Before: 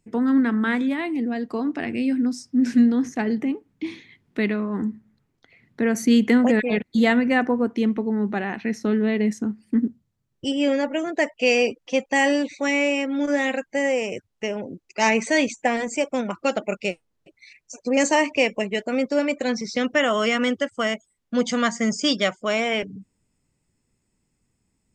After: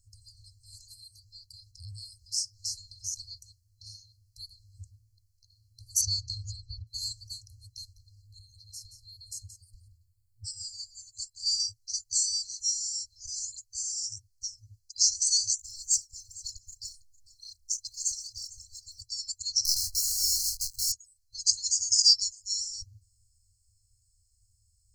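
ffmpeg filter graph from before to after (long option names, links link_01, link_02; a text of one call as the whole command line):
ffmpeg -i in.wav -filter_complex "[0:a]asettb=1/sr,asplit=3[link_01][link_02][link_03];[link_01]atrim=end=6.014[link_04];[link_02]atrim=start=6.01:end=6.87,asetpts=PTS-STARTPTS,afade=type=in:duration=0.004:curve=qsin,afade=type=out:start_time=0.856:duration=0.004:curve=qsin,lowpass=frequency=5800:width=0.5412,lowpass=frequency=5800:width=1.3066,equalizer=frequency=90:width=0.5:gain=12.5[link_05];[link_03]atrim=start=6.866[link_06];[link_04][link_05]acrossfade=duration=0.004:curve1=hsin:curve2=qsin[link_07];[link_07][link_06]acrossfade=duration=0.004:curve1=qsin:curve2=hsin,asettb=1/sr,asplit=3[link_08][link_09][link_10];[link_08]atrim=end=8.224[link_11];[link_09]atrim=start=8.22:end=11.6,asetpts=PTS-STARTPTS,afade=type=in:duration=0.004:curve=qsin,afade=type=out:start_time=3.376:duration=0.004:curve=qsin,equalizer=frequency=5900:width_type=o:width=0.36:gain=-11,aecho=1:1:176:0.266,atrim=end_sample=149058[link_12];[link_10]atrim=start=11.596[link_13];[link_11][link_12]acrossfade=duration=0.004:curve1=hsin:curve2=qsin[link_14];[link_14][link_13]acrossfade=duration=0.004:curve1=qsin:curve2=hsin,asettb=1/sr,asplit=3[link_15][link_16][link_17];[link_15]atrim=end=15.584[link_18];[link_16]atrim=start=15.58:end=19.02,asetpts=PTS-STARTPTS,afade=type=in:duration=0.004:curve=qsin,afade=type=out:start_time=3.436:duration=0.004:curve=qsin,aphaser=in_gain=1:out_gain=1:delay=3.9:decay=0.67:speed=1:type=triangular,acompressor=threshold=-26dB:ratio=10:attack=3.2:release=140:knee=1:detection=peak,aecho=1:1:453:0.119,atrim=end_sample=151704[link_19];[link_17]atrim=start=19.016[link_20];[link_18][link_19]acrossfade=duration=0.004:curve1=hsin:curve2=qsin[link_21];[link_21][link_20]acrossfade=duration=0.004:curve1=qsin:curve2=hsin,asettb=1/sr,asplit=3[link_22][link_23][link_24];[link_22]atrim=end=19.654[link_25];[link_23]atrim=start=19.65:end=20.92,asetpts=PTS-STARTPTS,afade=type=in:duration=0.004:curve=qsin,afade=type=out:start_time=1.266:duration=0.004:curve=qsin,acrusher=bits=6:dc=4:mix=0:aa=0.000001,asplit=2[link_26][link_27];[link_27]adelay=24,volume=-8dB[link_28];[link_26][link_28]amix=inputs=2:normalize=0,atrim=end_sample=56007[link_29];[link_24]atrim=start=20.916[link_30];[link_25][link_29]acrossfade=duration=0.004:curve1=hsin:curve2=qsin[link_31];[link_31][link_30]acrossfade=duration=0.004:curve1=qsin:curve2=hsin,afftfilt=real='re*(1-between(b*sr/4096,110,4100))':imag='im*(1-between(b*sr/4096,110,4100))':win_size=4096:overlap=0.75,adynamicequalizer=threshold=0.00398:dfrequency=6000:dqfactor=1.1:tfrequency=6000:tqfactor=1.1:attack=5:release=100:ratio=0.375:range=2:mode=boostabove:tftype=bell,volume=6.5dB" out.wav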